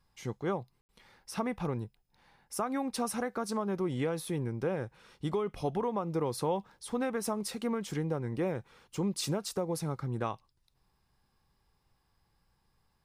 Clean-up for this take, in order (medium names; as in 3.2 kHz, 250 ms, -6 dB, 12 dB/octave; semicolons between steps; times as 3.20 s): room tone fill 0.81–0.89 s